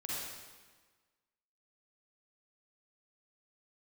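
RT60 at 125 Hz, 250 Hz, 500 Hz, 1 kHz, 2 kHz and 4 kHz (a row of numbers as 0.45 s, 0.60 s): 1.4 s, 1.5 s, 1.4 s, 1.4 s, 1.3 s, 1.2 s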